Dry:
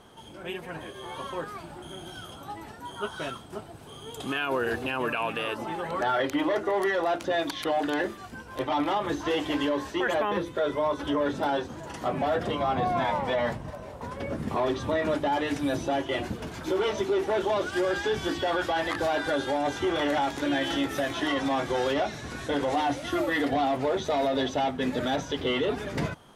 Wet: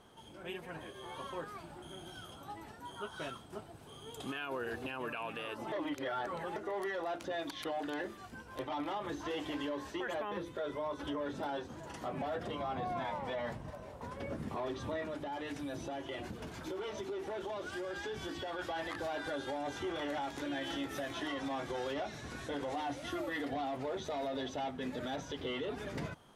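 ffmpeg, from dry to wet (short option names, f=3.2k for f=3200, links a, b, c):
-filter_complex "[0:a]asettb=1/sr,asplit=3[a][b][c];[a]atrim=end=15.044[d];[b]atrim=start=15.04:end=18.59,asetpts=PTS-STARTPTS,afade=t=in:d=0.004:c=qsin,afade=t=out:st=3.546:d=0.004:c=qsin,acompressor=threshold=-31dB:ratio=3:attack=3.2:release=140:knee=1:detection=peak[e];[c]atrim=start=18.586[f];[d][e]acrossfade=d=0.004:c1=hsin:c2=qsin[g];[g][f]acrossfade=d=0.004:c1=qsin:c2=hsin,asplit=3[h][i][j];[h]atrim=end=5.722[k];[i]atrim=start=5.718:end=6.562,asetpts=PTS-STARTPTS,areverse[l];[j]atrim=start=6.558[m];[k][l]acrossfade=d=0.004:c1=hsin:c2=hsin[n];[n][m]acrossfade=d=0.004:c1=hsin:c2=hsin,alimiter=limit=-22.5dB:level=0:latency=1:release=130,volume=-7.5dB"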